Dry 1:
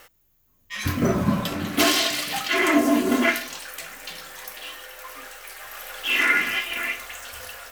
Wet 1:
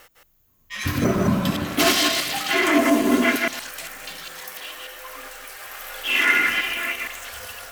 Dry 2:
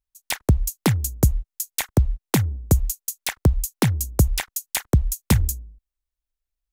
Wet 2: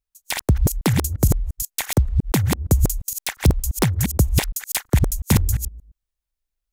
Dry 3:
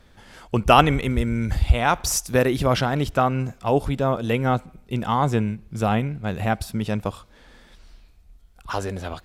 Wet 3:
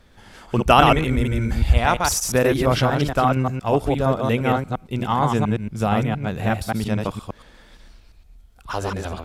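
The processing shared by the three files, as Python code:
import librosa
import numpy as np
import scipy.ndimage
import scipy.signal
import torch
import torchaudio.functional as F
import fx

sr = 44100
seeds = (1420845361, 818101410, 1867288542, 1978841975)

y = fx.reverse_delay(x, sr, ms=116, wet_db=-2.5)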